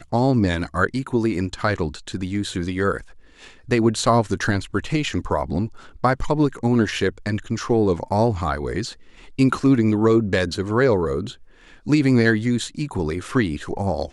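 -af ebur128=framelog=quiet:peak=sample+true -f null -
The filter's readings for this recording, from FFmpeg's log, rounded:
Integrated loudness:
  I:         -21.5 LUFS
  Threshold: -31.9 LUFS
Loudness range:
  LRA:         3.0 LU
  Threshold: -41.8 LUFS
  LRA low:   -23.2 LUFS
  LRA high:  -20.2 LUFS
Sample peak:
  Peak:       -4.0 dBFS
True peak:
  Peak:       -4.0 dBFS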